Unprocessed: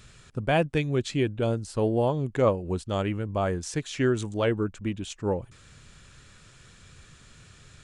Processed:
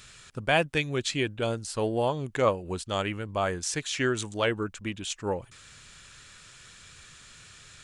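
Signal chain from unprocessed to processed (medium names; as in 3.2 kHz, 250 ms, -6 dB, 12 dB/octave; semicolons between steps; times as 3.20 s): tilt shelf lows -6 dB, about 760 Hz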